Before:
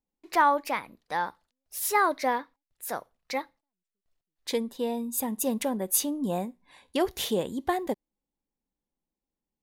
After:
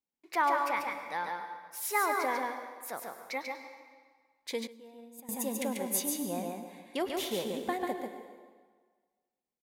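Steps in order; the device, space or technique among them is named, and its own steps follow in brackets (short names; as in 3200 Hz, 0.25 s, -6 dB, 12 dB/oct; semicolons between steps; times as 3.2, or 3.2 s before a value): PA in a hall (HPF 190 Hz 6 dB/oct; bell 2200 Hz +6.5 dB 0.25 oct; echo 0.141 s -4 dB; reverb RT60 1.6 s, pre-delay 96 ms, DRR 7.5 dB); 4.67–5.29 gate -23 dBFS, range -17 dB; gain -6.5 dB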